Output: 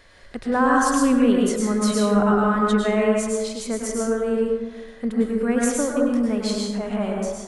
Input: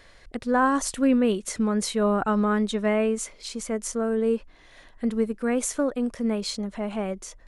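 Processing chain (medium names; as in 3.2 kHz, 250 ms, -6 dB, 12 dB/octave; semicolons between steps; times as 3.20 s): plate-style reverb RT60 1.2 s, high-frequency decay 0.45×, pre-delay 90 ms, DRR -2 dB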